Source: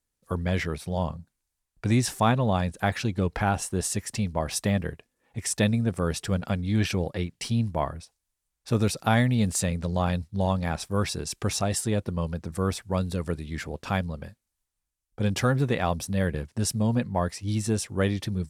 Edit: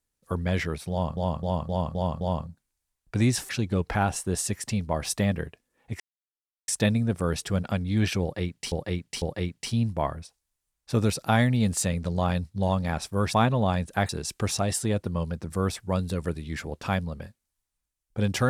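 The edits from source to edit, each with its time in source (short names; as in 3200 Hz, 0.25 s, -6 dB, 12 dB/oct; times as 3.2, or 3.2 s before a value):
0.91–1.17 loop, 6 plays
2.19–2.95 move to 11.11
5.46 insert silence 0.68 s
7–7.5 loop, 3 plays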